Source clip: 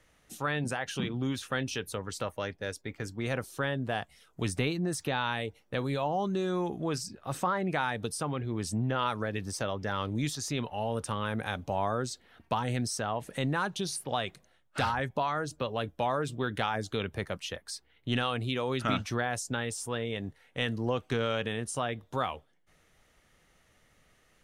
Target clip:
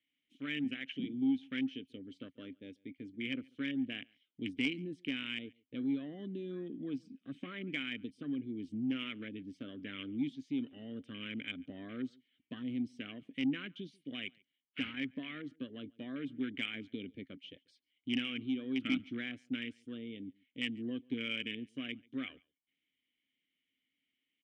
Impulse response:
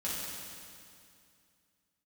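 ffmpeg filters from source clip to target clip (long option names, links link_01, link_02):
-filter_complex "[0:a]afwtdn=0.0158,asplit=3[link_01][link_02][link_03];[link_01]bandpass=frequency=270:width_type=q:width=8,volume=0dB[link_04];[link_02]bandpass=frequency=2290:width_type=q:width=8,volume=-6dB[link_05];[link_03]bandpass=frequency=3010:width_type=q:width=8,volume=-9dB[link_06];[link_04][link_05][link_06]amix=inputs=3:normalize=0,equalizer=frequency=3000:width_type=o:width=0.94:gain=12,asoftclip=type=tanh:threshold=-25dB,asplit=2[link_07][link_08];[link_08]adelay=139.9,volume=-27dB,highshelf=frequency=4000:gain=-3.15[link_09];[link_07][link_09]amix=inputs=2:normalize=0,volume=4.5dB"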